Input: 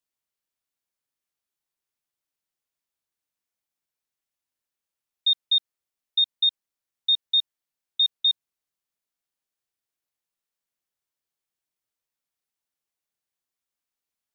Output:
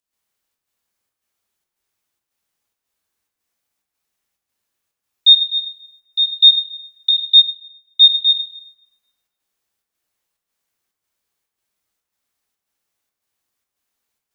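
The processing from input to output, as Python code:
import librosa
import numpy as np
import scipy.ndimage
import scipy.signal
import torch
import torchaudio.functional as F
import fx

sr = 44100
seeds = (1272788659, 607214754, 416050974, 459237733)

p1 = fx.level_steps(x, sr, step_db=14)
p2 = x + (p1 * librosa.db_to_amplitude(-2.5))
p3 = fx.peak_eq(p2, sr, hz=fx.line((5.39, 3400.0), (6.32, 3500.0)), db=-10.0, octaves=0.36, at=(5.39, 6.32), fade=0.02)
p4 = fx.volume_shaper(p3, sr, bpm=110, per_beat=1, depth_db=-10, release_ms=126.0, shape='slow start')
p5 = p4 + fx.echo_bbd(p4, sr, ms=262, stages=4096, feedback_pct=74, wet_db=-16.5, dry=0)
p6 = fx.rev_plate(p5, sr, seeds[0], rt60_s=1.1, hf_ratio=0.6, predelay_ms=0, drr_db=0.5)
p7 = fx.upward_expand(p6, sr, threshold_db=-28.0, expansion=1.5, at=(7.35, 8.03))
y = p7 * librosa.db_to_amplitude(7.0)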